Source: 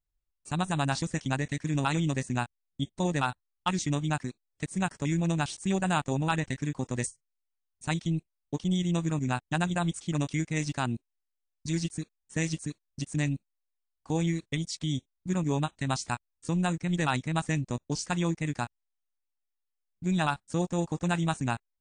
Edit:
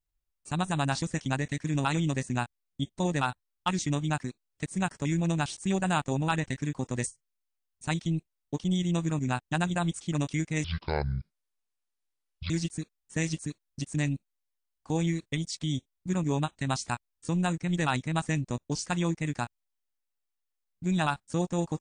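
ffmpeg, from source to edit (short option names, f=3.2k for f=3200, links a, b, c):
-filter_complex "[0:a]asplit=3[a][b][c];[a]atrim=end=10.644[d];[b]atrim=start=10.64:end=11.7,asetpts=PTS-STARTPTS,asetrate=25137,aresample=44100[e];[c]atrim=start=11.696[f];[d][e]acrossfade=d=0.004:c1=hsin:c2=hsin[g];[g][f]acrossfade=d=0.004:c1=hsin:c2=hsin"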